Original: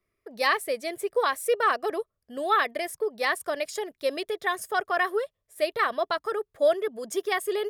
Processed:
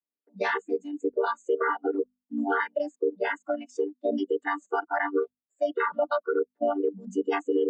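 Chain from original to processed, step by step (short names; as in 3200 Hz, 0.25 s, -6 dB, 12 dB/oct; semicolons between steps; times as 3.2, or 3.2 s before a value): chord vocoder minor triad, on G3; spectral noise reduction 27 dB; dynamic EQ 880 Hz, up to -4 dB, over -39 dBFS, Q 3.1; limiter -21 dBFS, peak gain reduction 8 dB; high shelf 5600 Hz -7 dB; notches 50/100/150/200/250 Hz; gain +4.5 dB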